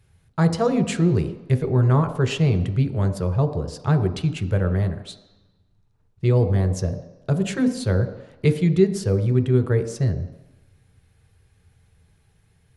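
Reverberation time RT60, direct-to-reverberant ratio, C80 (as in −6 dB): 1.0 s, 6.5 dB, 12.5 dB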